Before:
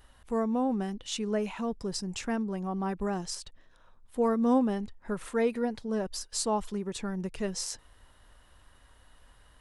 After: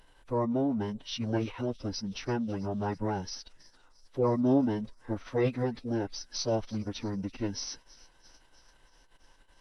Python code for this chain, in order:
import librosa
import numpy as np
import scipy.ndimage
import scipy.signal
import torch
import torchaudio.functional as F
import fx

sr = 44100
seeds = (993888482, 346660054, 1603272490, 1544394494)

y = fx.echo_wet_highpass(x, sr, ms=328, feedback_pct=68, hz=2500.0, wet_db=-19)
y = fx.pitch_keep_formants(y, sr, semitones=-11.0)